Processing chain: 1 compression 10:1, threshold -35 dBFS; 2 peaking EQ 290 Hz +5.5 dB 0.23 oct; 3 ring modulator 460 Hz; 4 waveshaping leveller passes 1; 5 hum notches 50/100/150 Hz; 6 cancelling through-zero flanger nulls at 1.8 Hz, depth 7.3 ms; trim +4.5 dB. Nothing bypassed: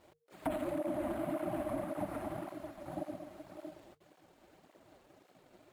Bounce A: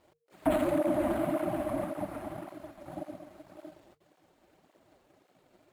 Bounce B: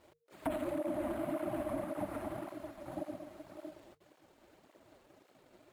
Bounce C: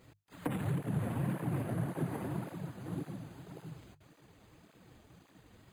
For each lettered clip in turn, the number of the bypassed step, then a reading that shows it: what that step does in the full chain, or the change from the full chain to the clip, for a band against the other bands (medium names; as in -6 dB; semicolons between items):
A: 1, mean gain reduction 2.5 dB; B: 2, 125 Hz band -1.5 dB; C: 3, momentary loudness spread change +1 LU